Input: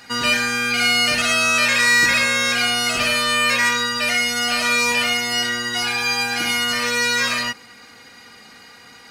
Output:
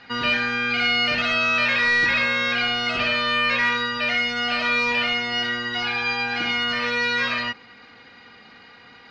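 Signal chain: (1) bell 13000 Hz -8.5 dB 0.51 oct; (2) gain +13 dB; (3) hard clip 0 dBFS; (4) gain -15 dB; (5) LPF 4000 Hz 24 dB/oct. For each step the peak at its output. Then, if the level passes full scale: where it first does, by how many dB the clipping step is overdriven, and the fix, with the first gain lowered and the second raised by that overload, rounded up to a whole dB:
-6.0, +7.0, 0.0, -15.0, -13.0 dBFS; step 2, 7.0 dB; step 2 +6 dB, step 4 -8 dB

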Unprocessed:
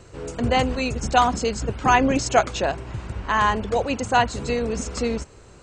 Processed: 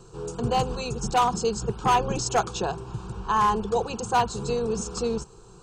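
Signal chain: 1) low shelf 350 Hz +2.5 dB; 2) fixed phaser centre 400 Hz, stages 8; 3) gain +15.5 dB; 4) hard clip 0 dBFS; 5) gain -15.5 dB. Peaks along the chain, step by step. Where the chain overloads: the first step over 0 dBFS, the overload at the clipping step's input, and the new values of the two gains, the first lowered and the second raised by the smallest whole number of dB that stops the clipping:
-3.5, -7.5, +8.0, 0.0, -15.5 dBFS; step 3, 8.0 dB; step 3 +7.5 dB, step 5 -7.5 dB

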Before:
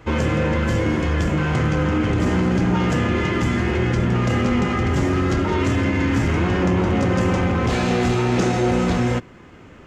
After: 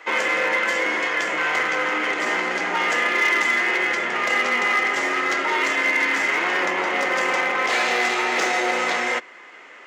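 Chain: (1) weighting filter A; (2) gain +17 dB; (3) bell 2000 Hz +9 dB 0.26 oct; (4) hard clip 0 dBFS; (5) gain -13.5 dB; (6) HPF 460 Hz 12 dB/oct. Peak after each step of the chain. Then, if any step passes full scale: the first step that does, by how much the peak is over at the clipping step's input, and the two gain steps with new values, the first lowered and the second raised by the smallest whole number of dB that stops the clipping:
-11.0, +6.0, +6.5, 0.0, -13.5, -9.0 dBFS; step 2, 6.5 dB; step 2 +10 dB, step 5 -6.5 dB

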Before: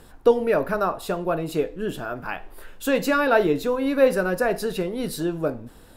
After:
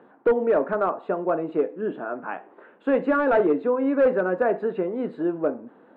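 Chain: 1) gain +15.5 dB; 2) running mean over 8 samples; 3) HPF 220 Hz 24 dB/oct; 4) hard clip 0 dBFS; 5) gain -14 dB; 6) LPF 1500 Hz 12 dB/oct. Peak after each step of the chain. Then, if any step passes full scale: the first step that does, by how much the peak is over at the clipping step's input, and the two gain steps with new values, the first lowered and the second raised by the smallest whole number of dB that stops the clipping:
+9.0, +9.0, +10.0, 0.0, -14.0, -13.5 dBFS; step 1, 10.0 dB; step 1 +5.5 dB, step 5 -4 dB

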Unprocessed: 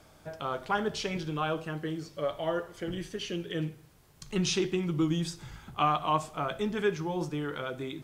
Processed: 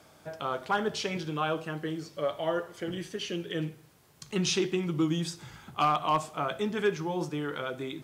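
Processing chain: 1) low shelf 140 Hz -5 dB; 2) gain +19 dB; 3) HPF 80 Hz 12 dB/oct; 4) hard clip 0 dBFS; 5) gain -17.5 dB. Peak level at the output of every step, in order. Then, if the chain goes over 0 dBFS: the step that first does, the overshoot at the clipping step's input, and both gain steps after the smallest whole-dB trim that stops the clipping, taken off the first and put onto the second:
-14.5, +4.5, +5.0, 0.0, -17.5 dBFS; step 2, 5.0 dB; step 2 +14 dB, step 5 -12.5 dB

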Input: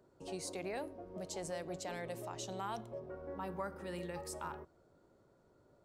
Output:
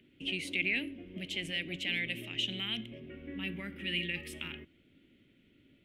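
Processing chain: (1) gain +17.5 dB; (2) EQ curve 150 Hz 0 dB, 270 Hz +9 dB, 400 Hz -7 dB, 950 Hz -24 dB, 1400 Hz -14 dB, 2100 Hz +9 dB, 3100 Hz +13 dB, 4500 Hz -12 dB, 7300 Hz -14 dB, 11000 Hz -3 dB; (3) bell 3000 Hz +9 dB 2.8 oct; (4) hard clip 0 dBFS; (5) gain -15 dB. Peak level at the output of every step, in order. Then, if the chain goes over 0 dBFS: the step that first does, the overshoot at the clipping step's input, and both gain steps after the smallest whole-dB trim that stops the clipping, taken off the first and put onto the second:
-10.0, -10.0, -2.5, -2.5, -17.5 dBFS; no overload

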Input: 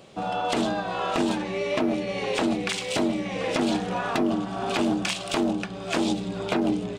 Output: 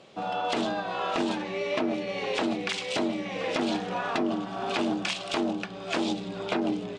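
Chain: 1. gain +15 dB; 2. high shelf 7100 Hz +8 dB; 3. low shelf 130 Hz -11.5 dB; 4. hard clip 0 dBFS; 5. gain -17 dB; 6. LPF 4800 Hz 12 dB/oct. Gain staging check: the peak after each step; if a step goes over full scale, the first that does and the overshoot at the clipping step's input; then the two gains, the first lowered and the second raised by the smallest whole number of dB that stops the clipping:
+1.5, +3.5, +4.0, 0.0, -17.0, -16.5 dBFS; step 1, 4.0 dB; step 1 +11 dB, step 5 -13 dB

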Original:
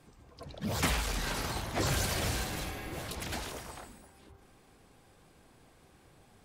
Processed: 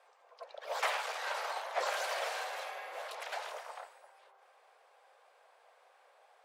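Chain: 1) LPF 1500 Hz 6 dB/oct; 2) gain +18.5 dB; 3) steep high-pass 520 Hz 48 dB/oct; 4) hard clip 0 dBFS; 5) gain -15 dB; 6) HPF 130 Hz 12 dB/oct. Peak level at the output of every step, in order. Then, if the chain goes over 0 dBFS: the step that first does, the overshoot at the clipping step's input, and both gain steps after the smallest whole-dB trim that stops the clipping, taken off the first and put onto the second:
-20.0, -1.5, -3.0, -3.0, -18.0, -18.0 dBFS; no overload

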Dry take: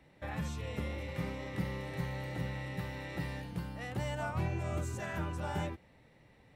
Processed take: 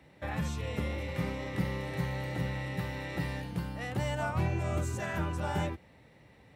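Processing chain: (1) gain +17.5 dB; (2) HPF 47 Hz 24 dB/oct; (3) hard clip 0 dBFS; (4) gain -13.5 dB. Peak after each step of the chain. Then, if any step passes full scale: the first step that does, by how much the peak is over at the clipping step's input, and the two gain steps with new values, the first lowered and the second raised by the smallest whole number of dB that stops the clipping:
-8.0, -4.5, -4.5, -18.0 dBFS; no overload

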